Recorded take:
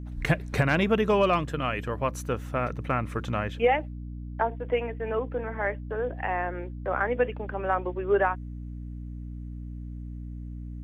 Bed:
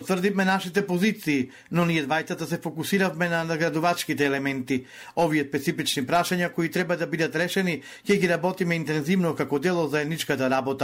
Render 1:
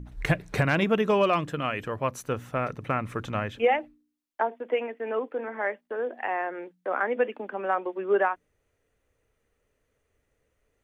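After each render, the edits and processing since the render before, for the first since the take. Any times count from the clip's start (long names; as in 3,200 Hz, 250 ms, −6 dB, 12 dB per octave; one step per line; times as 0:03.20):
hum removal 60 Hz, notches 5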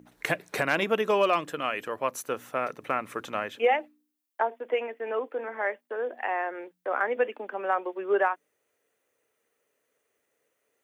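high-pass filter 330 Hz 12 dB per octave
high-shelf EQ 10,000 Hz +10.5 dB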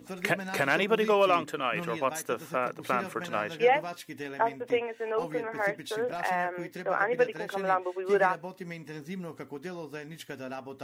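mix in bed −15.5 dB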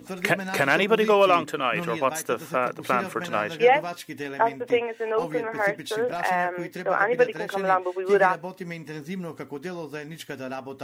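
level +5 dB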